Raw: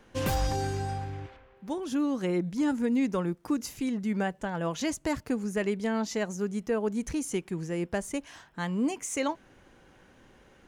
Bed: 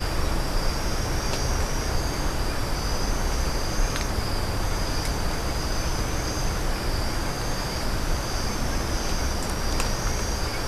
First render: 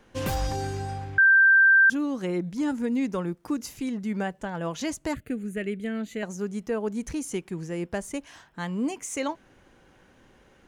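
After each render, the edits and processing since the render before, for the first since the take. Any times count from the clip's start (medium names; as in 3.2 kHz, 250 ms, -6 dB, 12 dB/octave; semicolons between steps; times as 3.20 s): 1.18–1.90 s: bleep 1.57 kHz -13.5 dBFS; 5.14–6.23 s: static phaser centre 2.3 kHz, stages 4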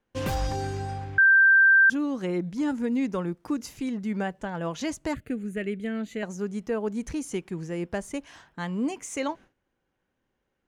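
gate with hold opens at -44 dBFS; treble shelf 8.5 kHz -7 dB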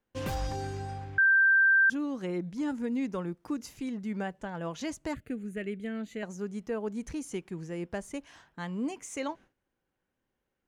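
trim -5 dB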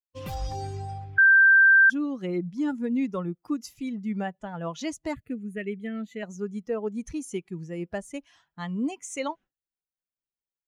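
expander on every frequency bin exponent 1.5; level rider gain up to 6 dB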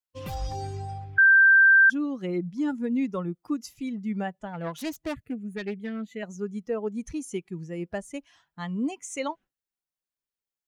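4.53–6.10 s: self-modulated delay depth 0.19 ms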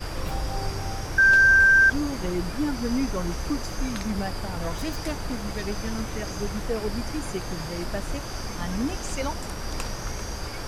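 add bed -6 dB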